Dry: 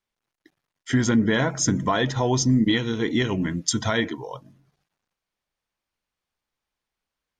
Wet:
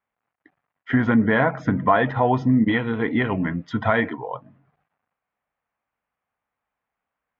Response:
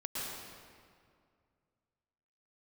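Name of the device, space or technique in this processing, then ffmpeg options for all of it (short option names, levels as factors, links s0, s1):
bass cabinet: -af "highpass=67,equalizer=f=70:t=q:w=4:g=-8,equalizer=f=130:t=q:w=4:g=-4,equalizer=f=190:t=q:w=4:g=-3,equalizer=f=350:t=q:w=4:g=-8,equalizer=f=740:t=q:w=4:g=5,equalizer=f=1200:t=q:w=4:g=3,lowpass=f=2300:w=0.5412,lowpass=f=2300:w=1.3066,volume=1.58"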